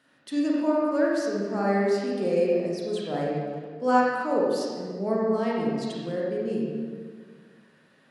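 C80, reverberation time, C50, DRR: 0.5 dB, 1.8 s, -3.0 dB, -4.5 dB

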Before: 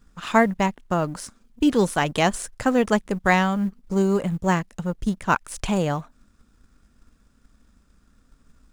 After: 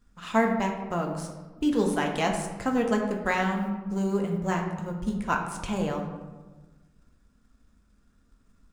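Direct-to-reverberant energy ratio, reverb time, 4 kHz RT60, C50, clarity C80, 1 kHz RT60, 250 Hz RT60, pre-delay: 1.0 dB, 1.3 s, 0.70 s, 5.5 dB, 7.5 dB, 1.2 s, 1.7 s, 3 ms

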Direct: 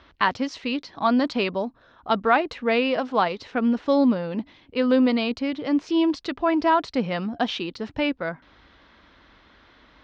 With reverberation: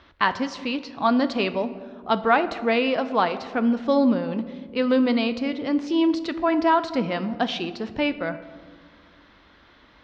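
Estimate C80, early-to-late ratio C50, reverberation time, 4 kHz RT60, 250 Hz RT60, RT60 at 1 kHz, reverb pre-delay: 14.5 dB, 13.5 dB, 1.7 s, 0.85 s, 2.3 s, 1.4 s, 6 ms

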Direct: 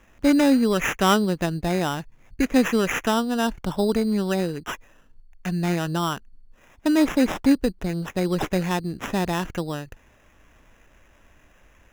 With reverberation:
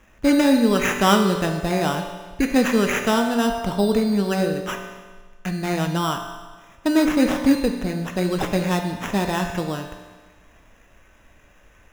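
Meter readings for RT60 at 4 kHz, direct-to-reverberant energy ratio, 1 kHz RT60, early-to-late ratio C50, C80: 1.4 s, 3.5 dB, 1.4 s, 6.0 dB, 7.5 dB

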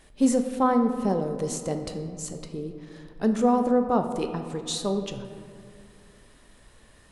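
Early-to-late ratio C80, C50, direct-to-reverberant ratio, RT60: 9.0 dB, 8.0 dB, 6.0 dB, 2.3 s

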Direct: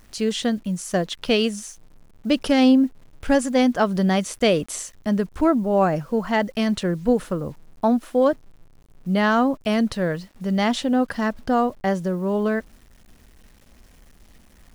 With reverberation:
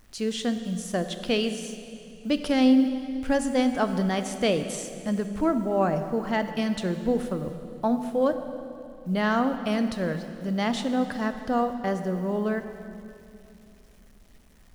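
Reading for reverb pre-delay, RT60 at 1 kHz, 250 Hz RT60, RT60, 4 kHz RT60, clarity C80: 17 ms, 2.5 s, 3.4 s, 2.8 s, 2.4 s, 9.5 dB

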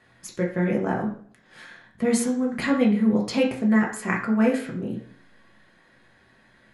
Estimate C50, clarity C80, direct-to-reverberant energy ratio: 8.0 dB, 12.5 dB, -3.0 dB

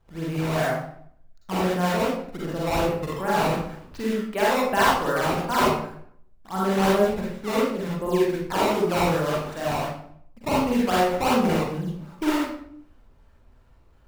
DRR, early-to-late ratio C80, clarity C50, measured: -6.5 dB, 3.5 dB, -2.5 dB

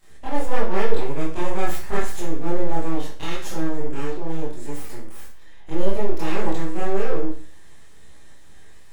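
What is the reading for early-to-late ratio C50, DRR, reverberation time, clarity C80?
2.5 dB, -10.5 dB, 0.45 s, 8.5 dB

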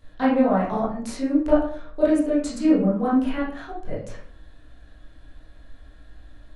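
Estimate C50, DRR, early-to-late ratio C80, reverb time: 2.0 dB, -10.0 dB, 8.0 dB, 0.50 s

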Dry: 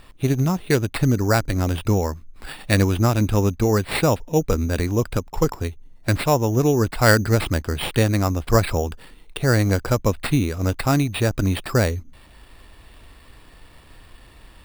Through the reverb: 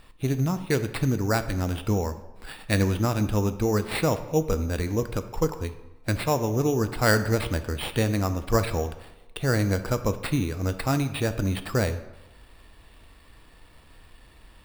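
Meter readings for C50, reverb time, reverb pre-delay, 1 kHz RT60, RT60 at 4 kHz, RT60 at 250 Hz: 12.0 dB, 1.0 s, 3 ms, 1.1 s, 0.70 s, 0.95 s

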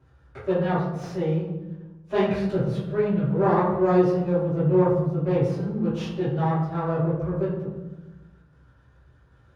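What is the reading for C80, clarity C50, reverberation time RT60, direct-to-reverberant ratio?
4.0 dB, 1.0 dB, 1.1 s, -18.0 dB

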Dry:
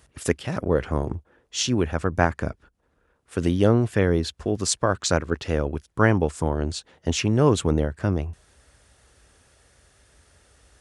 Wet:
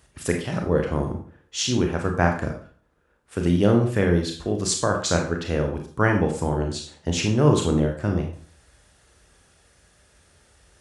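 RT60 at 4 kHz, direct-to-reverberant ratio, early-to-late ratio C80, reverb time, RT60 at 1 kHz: 0.40 s, 2.5 dB, 11.0 dB, 0.45 s, 0.40 s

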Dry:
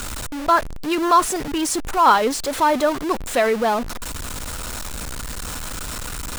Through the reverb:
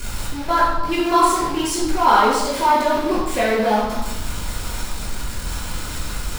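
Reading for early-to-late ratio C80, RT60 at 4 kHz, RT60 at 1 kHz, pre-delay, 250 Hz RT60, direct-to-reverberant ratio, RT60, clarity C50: 4.0 dB, 1.0 s, 1.0 s, 3 ms, 1.4 s, -9.0 dB, 1.0 s, 1.0 dB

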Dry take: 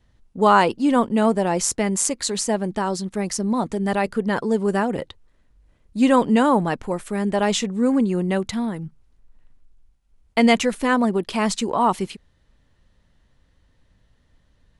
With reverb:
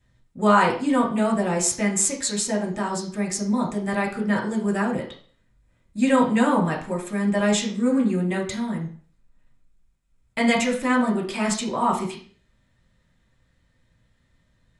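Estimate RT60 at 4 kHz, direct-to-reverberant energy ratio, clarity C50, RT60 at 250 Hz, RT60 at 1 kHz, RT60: 0.40 s, -2.0 dB, 8.0 dB, 0.50 s, 0.45 s, 0.45 s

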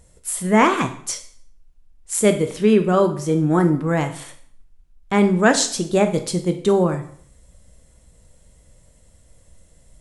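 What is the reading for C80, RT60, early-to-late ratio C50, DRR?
15.0 dB, 0.55 s, 11.0 dB, 6.5 dB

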